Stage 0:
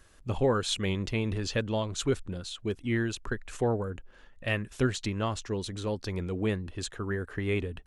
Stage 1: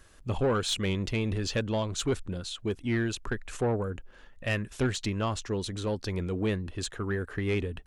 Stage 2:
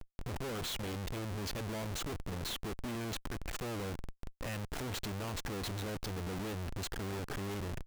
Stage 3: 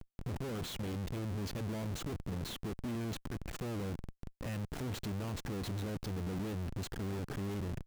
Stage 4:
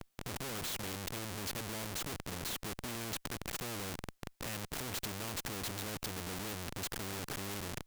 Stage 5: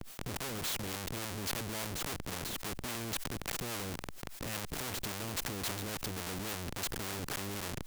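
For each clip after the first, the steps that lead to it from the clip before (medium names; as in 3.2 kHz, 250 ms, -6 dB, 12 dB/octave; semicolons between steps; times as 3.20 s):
saturation -22 dBFS, distortion -16 dB; trim +2 dB
compression 5:1, threshold -37 dBFS, peak gain reduction 12.5 dB; Schmitt trigger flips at -45 dBFS; trim +1.5 dB
peaking EQ 160 Hz +8.5 dB 2.7 oct; trim -5 dB
spectrum-flattening compressor 2:1; trim +6 dB
harmonic tremolo 3.6 Hz, depth 50%, crossover 500 Hz; decay stretcher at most 65 dB/s; trim +4 dB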